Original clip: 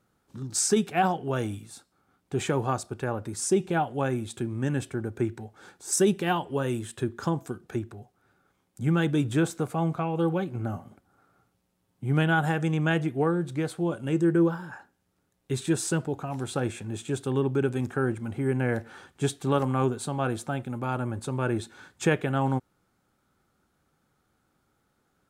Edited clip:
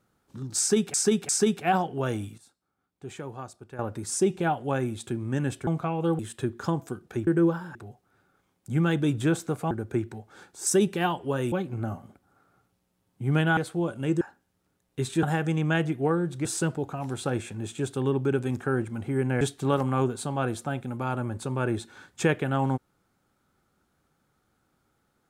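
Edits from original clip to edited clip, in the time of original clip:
0.59–0.94 s: loop, 3 plays
1.68–3.09 s: gain -11.5 dB
4.97–6.78 s: swap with 9.82–10.34 s
12.39–13.61 s: move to 15.75 s
14.25–14.73 s: move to 7.86 s
18.71–19.23 s: delete

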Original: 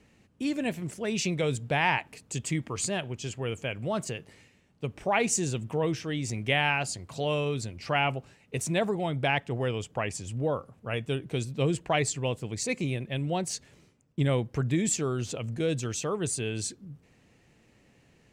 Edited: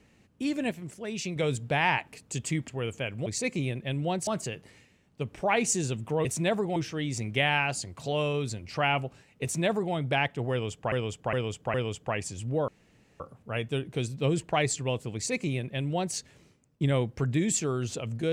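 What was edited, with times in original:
0.71–1.36 s: gain -5 dB
2.68–3.32 s: delete
8.55–9.06 s: copy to 5.88 s
9.63–10.04 s: loop, 4 plays
10.57 s: insert room tone 0.52 s
12.51–13.52 s: copy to 3.90 s

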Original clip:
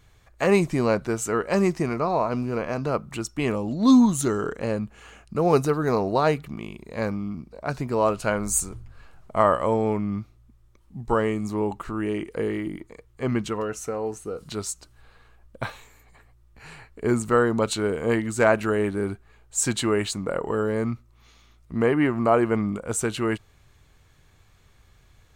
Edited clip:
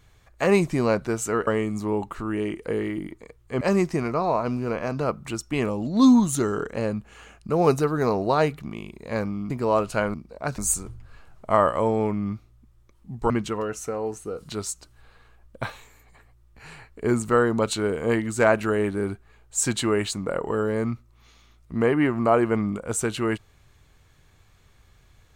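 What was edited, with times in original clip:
7.36–7.80 s: move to 8.44 s
11.16–13.30 s: move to 1.47 s

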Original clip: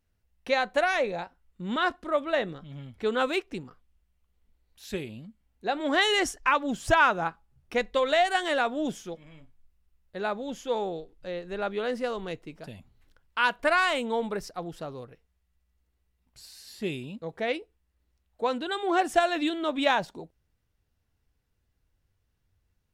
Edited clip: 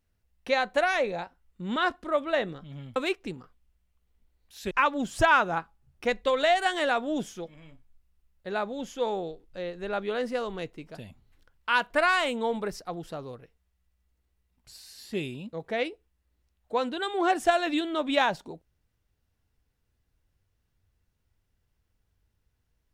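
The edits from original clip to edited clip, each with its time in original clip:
2.96–3.23 s: delete
4.98–6.40 s: delete

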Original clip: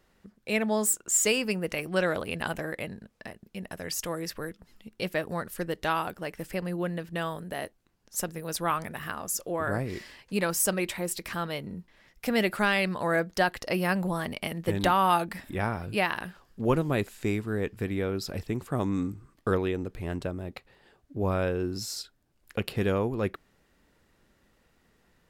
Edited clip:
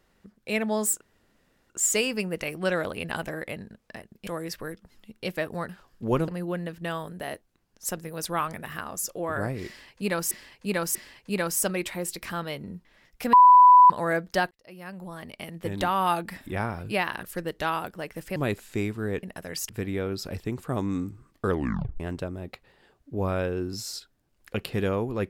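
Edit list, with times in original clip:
1.01 s: insert room tone 0.69 s
3.58–4.04 s: move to 17.72 s
5.46–6.59 s: swap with 16.26–16.85 s
9.98–10.62 s: loop, 3 plays
12.36–12.93 s: bleep 994 Hz -9.5 dBFS
13.54–15.33 s: fade in
19.53 s: tape stop 0.50 s

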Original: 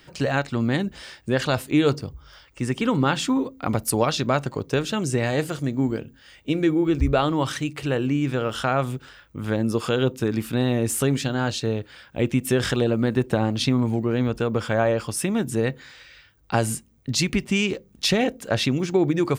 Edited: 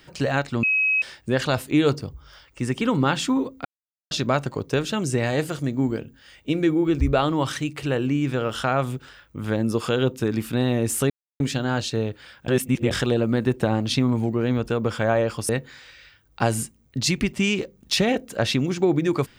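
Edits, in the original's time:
0.63–1.02 s: bleep 2.55 kHz -17.5 dBFS
3.65–4.11 s: mute
11.10 s: insert silence 0.30 s
12.18–12.61 s: reverse
15.19–15.61 s: delete

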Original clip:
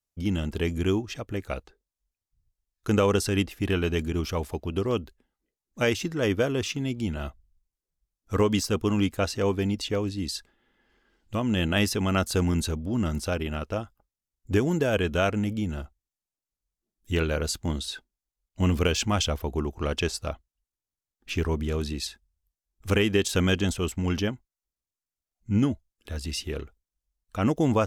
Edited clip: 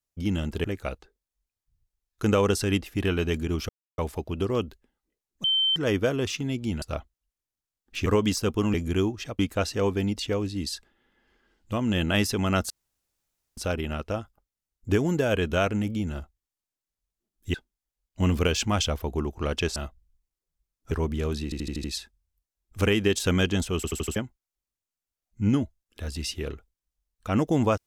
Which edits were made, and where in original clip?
0.64–1.29 s: move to 9.01 s
4.34 s: insert silence 0.29 s
5.80–6.12 s: bleep 3.1 kHz -20 dBFS
7.18–8.33 s: swap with 20.16–21.40 s
12.32–13.19 s: room tone
17.16–17.94 s: delete
21.93 s: stutter 0.08 s, 6 plays
23.85 s: stutter in place 0.08 s, 5 plays

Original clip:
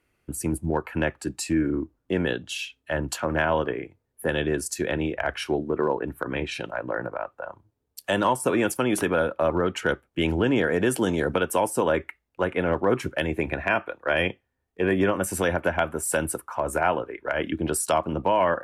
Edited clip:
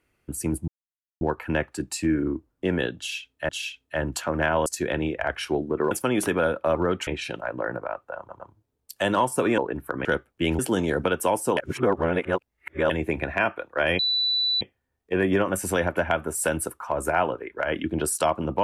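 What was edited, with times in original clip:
0.68 s: insert silence 0.53 s
2.45–2.96 s: loop, 2 plays
3.62–4.65 s: delete
5.90–6.37 s: swap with 8.66–9.82 s
7.48 s: stutter 0.11 s, 3 plays
10.36–10.89 s: delete
11.87–13.20 s: reverse
14.29 s: add tone 3.97 kHz -20.5 dBFS 0.62 s

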